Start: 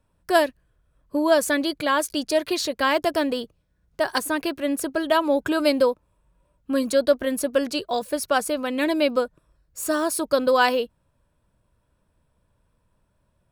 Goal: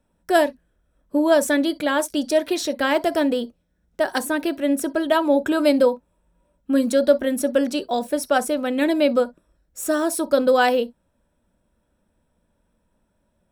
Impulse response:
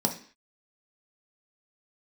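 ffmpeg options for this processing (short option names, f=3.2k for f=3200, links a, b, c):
-filter_complex "[0:a]asplit=2[a][b];[1:a]atrim=start_sample=2205,atrim=end_sample=3087[c];[b][c]afir=irnorm=-1:irlink=0,volume=-15.5dB[d];[a][d]amix=inputs=2:normalize=0,volume=-1.5dB"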